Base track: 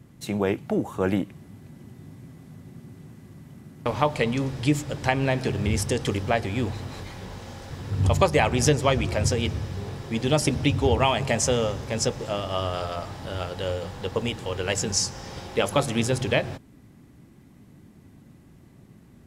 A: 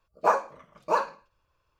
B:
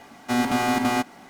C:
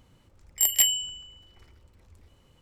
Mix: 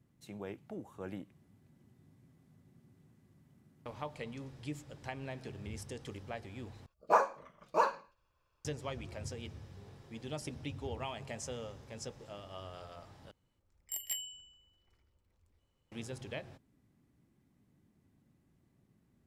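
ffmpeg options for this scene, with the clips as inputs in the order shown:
-filter_complex "[0:a]volume=-19.5dB,asplit=3[a][b][c];[a]atrim=end=6.864[d];[1:a]atrim=end=1.79,asetpts=PTS-STARTPTS,volume=-4.5dB[e];[b]atrim=start=8.646:end=13.314[f];[3:a]atrim=end=2.61,asetpts=PTS-STARTPTS,volume=-17.5dB[g];[c]atrim=start=15.916[h];[d][e]acrossfade=d=0.004:c1=hsin:c2=hsin[i];[i][f]acrossfade=d=0.004:c1=hsin:c2=hsin[j];[j][g]acrossfade=d=0.004:c1=hsin:c2=hsin[k];[k][h]acrossfade=d=0.004:c1=hsin:c2=hsin"

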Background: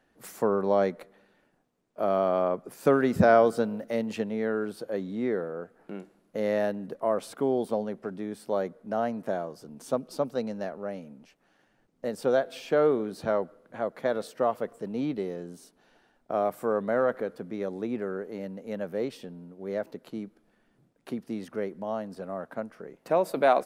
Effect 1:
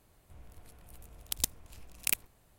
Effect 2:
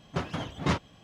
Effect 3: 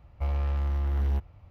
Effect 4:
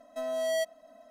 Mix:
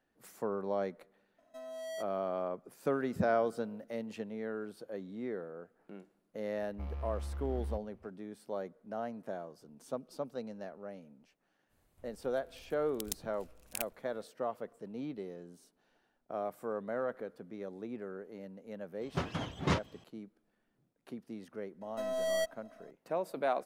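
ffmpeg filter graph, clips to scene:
-filter_complex "[4:a]asplit=2[a][b];[0:a]volume=-10.5dB[c];[b]aeval=exprs='if(lt(val(0),0),0.708*val(0),val(0))':c=same[d];[a]atrim=end=1.1,asetpts=PTS-STARTPTS,volume=-12.5dB,afade=t=in:d=0.004:c=hsin,afade=t=out:st=1.096:d=0.004:c=hsin,adelay=1380[e];[3:a]atrim=end=1.5,asetpts=PTS-STARTPTS,volume=-12.5dB,afade=t=in:d=0.004:c=hsin,afade=t=out:st=1.496:d=0.004:c=hsin,adelay=290178S[f];[1:a]atrim=end=2.58,asetpts=PTS-STARTPTS,volume=-9dB,afade=t=in:d=0.05,afade=t=out:st=2.53:d=0.05,adelay=11680[g];[2:a]atrim=end=1.03,asetpts=PTS-STARTPTS,volume=-3.5dB,afade=t=in:d=0.004:c=hsin,afade=t=out:st=1.026:d=0.004:c=hsin,adelay=19010[h];[d]atrim=end=1.1,asetpts=PTS-STARTPTS,volume=-1.5dB,afade=t=in:d=0.004:c=hsin,afade=t=out:st=1.096:d=0.004:c=hsin,adelay=21810[i];[c][e][f][g][h][i]amix=inputs=6:normalize=0"

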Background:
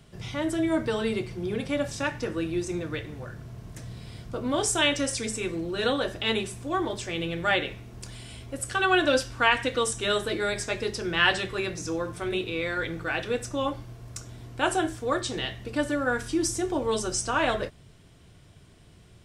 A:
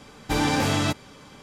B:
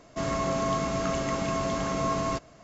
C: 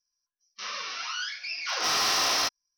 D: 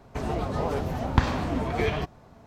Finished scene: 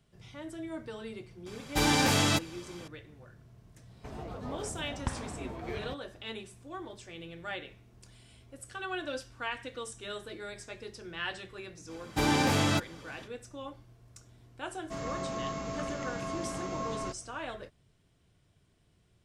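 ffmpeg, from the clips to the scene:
-filter_complex "[1:a]asplit=2[a][b];[0:a]volume=-14.5dB[c];[a]highshelf=f=2.4k:g=6.5[d];[b]highpass=45[e];[d]atrim=end=1.42,asetpts=PTS-STARTPTS,volume=-4dB,afade=t=in:d=0.004:c=hsin,afade=t=out:st=1.416:d=0.004:c=hsin,adelay=1460[f];[4:a]atrim=end=2.46,asetpts=PTS-STARTPTS,volume=-13dB,afade=t=in:d=0.004:c=hsin,afade=t=out:st=2.456:d=0.004:c=hsin,adelay=171549S[g];[e]atrim=end=1.42,asetpts=PTS-STARTPTS,volume=-3.5dB,afade=t=in:d=0.05,afade=t=out:st=1.37:d=0.05,adelay=11870[h];[2:a]atrim=end=2.63,asetpts=PTS-STARTPTS,volume=-8.5dB,afade=t=in:d=0.004:c=hsin,afade=t=out:st=2.626:d=0.004:c=hsin,adelay=14740[i];[c][f][g][h][i]amix=inputs=5:normalize=0"

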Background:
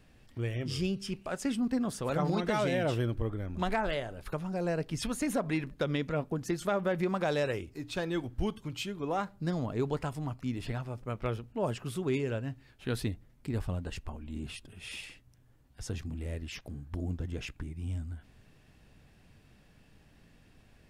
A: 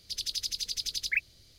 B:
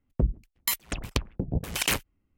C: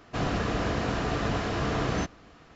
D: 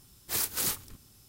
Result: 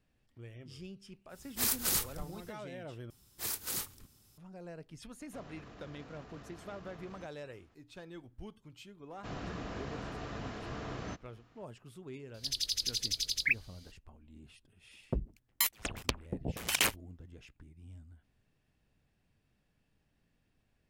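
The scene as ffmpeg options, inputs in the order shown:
-filter_complex "[4:a]asplit=2[a][b];[3:a]asplit=2[c][d];[0:a]volume=-15.5dB[e];[a]asubboost=boost=8:cutoff=86[f];[c]alimiter=level_in=3.5dB:limit=-24dB:level=0:latency=1:release=32,volume=-3.5dB[g];[2:a]lowshelf=f=220:g=-9.5[h];[e]asplit=2[i][j];[i]atrim=end=3.104[k];[b]atrim=end=1.28,asetpts=PTS-STARTPTS,volume=-7dB[l];[j]atrim=start=4.376[m];[f]atrim=end=1.28,asetpts=PTS-STARTPTS,volume=-1dB,afade=t=in:d=0.1,afade=t=out:st=1.18:d=0.1,adelay=1280[n];[g]atrim=end=2.55,asetpts=PTS-STARTPTS,volume=-17.5dB,afade=t=in:d=0.004:c=hsin,afade=t=out:st=2.546:d=0.004:c=hsin,adelay=5200[o];[d]atrim=end=2.55,asetpts=PTS-STARTPTS,volume=-13.5dB,afade=t=in:d=0.004:c=hsin,afade=t=out:st=2.546:d=0.004:c=hsin,adelay=9100[p];[1:a]atrim=end=1.58,asetpts=PTS-STARTPTS,volume=-0.5dB,afade=t=in:d=0.004:c=hsin,afade=t=out:st=1.576:d=0.004:c=hsin,adelay=12340[q];[h]atrim=end=2.37,asetpts=PTS-STARTPTS,volume=-2.5dB,afade=t=in:d=0.004:c=hsin,afade=t=out:st=2.366:d=0.004:c=hsin,adelay=14930[r];[k][l]acrossfade=d=0.004:c1=hsin:c2=hsin[s];[s][m]acrossfade=d=0.004:c1=hsin:c2=hsin[t];[t][n][o][p][q][r]amix=inputs=6:normalize=0"

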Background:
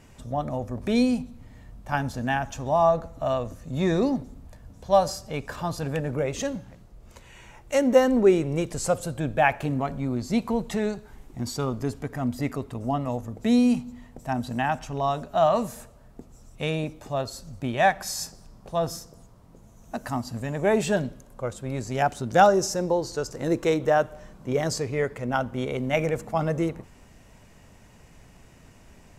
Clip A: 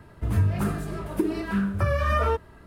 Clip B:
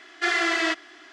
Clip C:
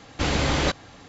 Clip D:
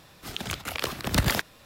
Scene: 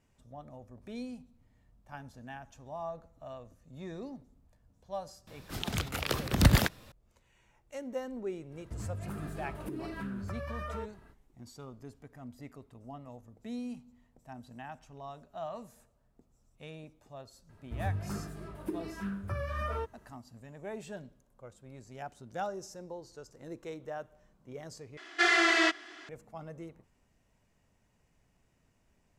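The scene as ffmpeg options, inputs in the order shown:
-filter_complex "[1:a]asplit=2[a][b];[0:a]volume=-19.5dB[c];[4:a]lowshelf=f=330:g=8[d];[a]acompressor=threshold=-27dB:ratio=6:attack=3.2:release=140:knee=1:detection=peak[e];[c]asplit=2[f][g];[f]atrim=end=24.974[h];[2:a]atrim=end=1.12,asetpts=PTS-STARTPTS,volume=-1.5dB[i];[g]atrim=start=26.086[j];[d]atrim=end=1.65,asetpts=PTS-STARTPTS,volume=-3.5dB,afade=t=in:d=0.004:c=hsin,afade=t=out:st=1.646:d=0.004:c=hsin,adelay=5270[k];[e]atrim=end=2.66,asetpts=PTS-STARTPTS,volume=-8.5dB,afade=t=in:d=0.05,afade=t=out:st=2.61:d=0.05,adelay=8490[l];[b]atrim=end=2.66,asetpts=PTS-STARTPTS,volume=-12dB,afade=t=in:d=0.004:c=hsin,afade=t=out:st=2.656:d=0.004:c=hsin,adelay=17490[m];[h][i]acrossfade=d=0.004:c1=hsin:c2=hsin[n];[n][j]acrossfade=d=0.004:c1=hsin:c2=hsin[o];[o][k][l][m]amix=inputs=4:normalize=0"

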